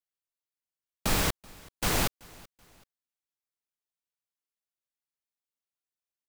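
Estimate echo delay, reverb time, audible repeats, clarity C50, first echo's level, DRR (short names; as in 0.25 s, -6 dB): 0.381 s, none, 2, none, -24.0 dB, none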